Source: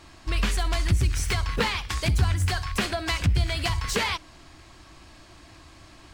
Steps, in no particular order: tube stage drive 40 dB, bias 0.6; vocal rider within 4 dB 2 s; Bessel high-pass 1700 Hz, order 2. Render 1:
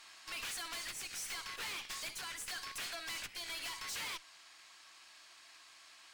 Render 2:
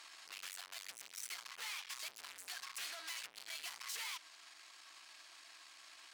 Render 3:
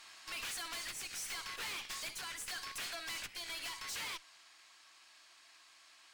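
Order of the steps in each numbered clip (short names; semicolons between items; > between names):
vocal rider > Bessel high-pass > tube stage; vocal rider > tube stage > Bessel high-pass; Bessel high-pass > vocal rider > tube stage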